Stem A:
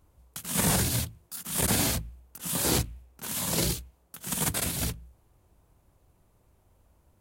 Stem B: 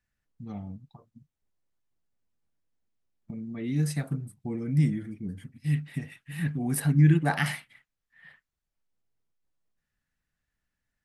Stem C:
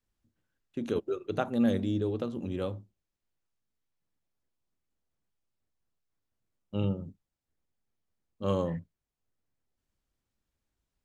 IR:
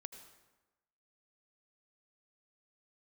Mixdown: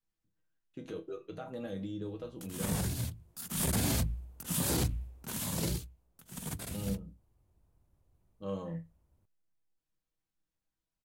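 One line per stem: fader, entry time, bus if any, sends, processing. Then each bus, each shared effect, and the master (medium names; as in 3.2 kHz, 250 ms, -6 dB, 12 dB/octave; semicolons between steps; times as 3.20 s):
3.08 s -12.5 dB -> 3.53 s -2 dB -> 5.18 s -2 dB -> 5.91 s -14.5 dB, 2.05 s, no send, bass shelf 330 Hz +8.5 dB
mute
+1.0 dB, 0.00 s, no send, comb 6.3 ms, depth 56%; peak limiter -23 dBFS, peak gain reduction 9.5 dB; chord resonator C2 major, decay 0.22 s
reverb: none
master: peak limiter -21 dBFS, peak gain reduction 11 dB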